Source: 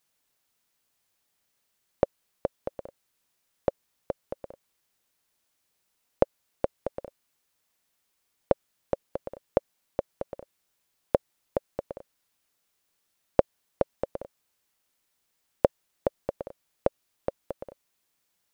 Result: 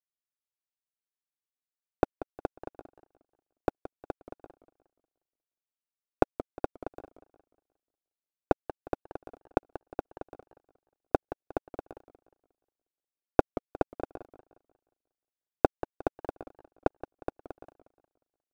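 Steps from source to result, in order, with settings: cycle switcher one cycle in 2, inverted; power-law curve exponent 1.4; warbling echo 0.179 s, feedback 38%, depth 204 cents, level -14 dB; gain +1 dB

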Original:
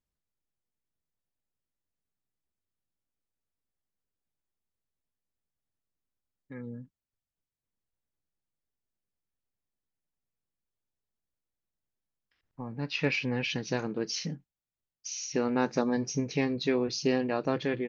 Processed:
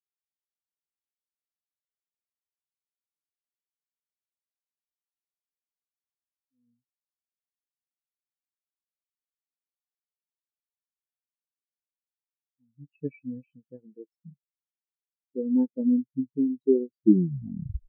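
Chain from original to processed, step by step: tape stop at the end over 0.96 s; air absorption 170 m; spectral expander 4:1; gain +8 dB

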